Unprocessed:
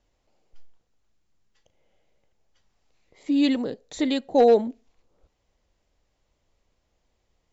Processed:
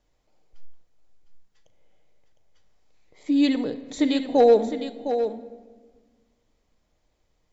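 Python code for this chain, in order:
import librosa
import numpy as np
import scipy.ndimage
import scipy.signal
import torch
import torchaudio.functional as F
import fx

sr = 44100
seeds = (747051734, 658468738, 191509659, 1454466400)

y = fx.notch(x, sr, hz=2800.0, q=19.0)
y = y + 10.0 ** (-9.0 / 20.0) * np.pad(y, (int(708 * sr / 1000.0), 0))[:len(y)]
y = fx.room_shoebox(y, sr, seeds[0], volume_m3=1500.0, walls='mixed', distance_m=0.49)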